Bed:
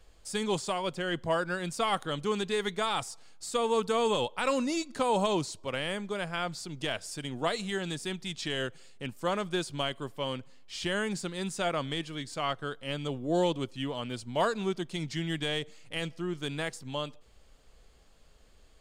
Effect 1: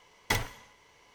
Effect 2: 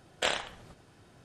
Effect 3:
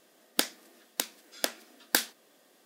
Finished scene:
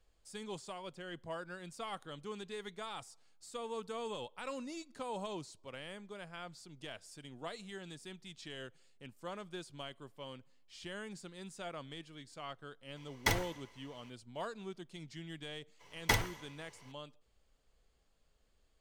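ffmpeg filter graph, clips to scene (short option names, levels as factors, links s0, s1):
-filter_complex "[1:a]asplit=2[s0][s1];[0:a]volume=0.2[s2];[s0]atrim=end=1.14,asetpts=PTS-STARTPTS,volume=0.75,afade=t=in:d=0.004:c=hsin,afade=t=out:st=1.136:d=0.004:c=hsin,adelay=12960[s3];[s1]atrim=end=1.14,asetpts=PTS-STARTPTS,volume=0.891,afade=t=in:d=0.02,afade=t=out:st=1.12:d=0.02,adelay=15790[s4];[s2][s3][s4]amix=inputs=3:normalize=0"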